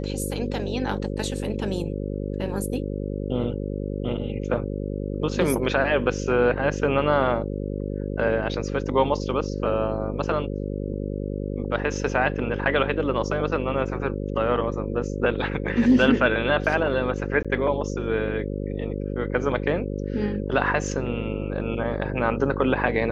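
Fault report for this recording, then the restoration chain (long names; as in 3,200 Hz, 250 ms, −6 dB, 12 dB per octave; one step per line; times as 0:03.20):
mains buzz 50 Hz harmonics 11 −29 dBFS
0:17.43–0:17.45: drop-out 16 ms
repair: hum removal 50 Hz, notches 11
repair the gap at 0:17.43, 16 ms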